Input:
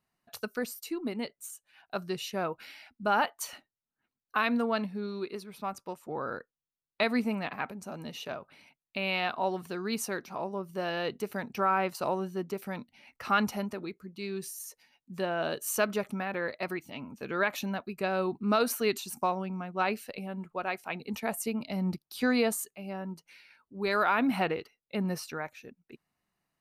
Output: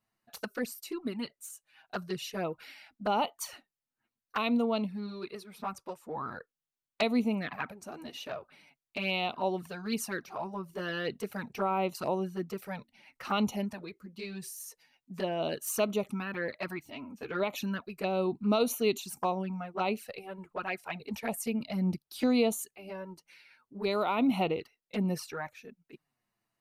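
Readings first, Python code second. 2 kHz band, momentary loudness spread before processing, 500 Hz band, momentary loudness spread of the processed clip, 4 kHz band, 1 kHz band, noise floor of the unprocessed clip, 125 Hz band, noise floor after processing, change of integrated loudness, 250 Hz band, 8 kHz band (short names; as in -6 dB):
-5.0 dB, 13 LU, -0.5 dB, 15 LU, -0.5 dB, -3.0 dB, under -85 dBFS, +0.5 dB, under -85 dBFS, -1.0 dB, +0.5 dB, -2.0 dB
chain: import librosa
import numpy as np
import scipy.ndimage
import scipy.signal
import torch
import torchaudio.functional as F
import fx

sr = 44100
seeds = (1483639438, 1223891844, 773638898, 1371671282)

y = fx.env_flanger(x, sr, rest_ms=9.1, full_db=-27.0)
y = y * librosa.db_to_amplitude(1.5)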